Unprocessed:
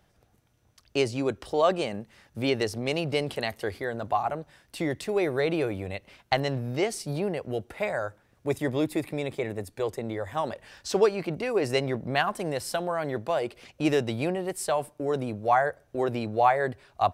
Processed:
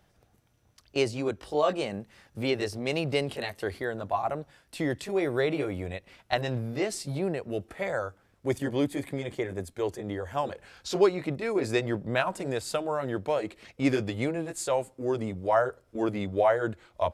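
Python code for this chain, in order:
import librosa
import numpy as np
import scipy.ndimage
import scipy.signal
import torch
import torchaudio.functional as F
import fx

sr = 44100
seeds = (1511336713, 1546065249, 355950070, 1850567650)

y = fx.pitch_glide(x, sr, semitones=-2.5, runs='starting unshifted')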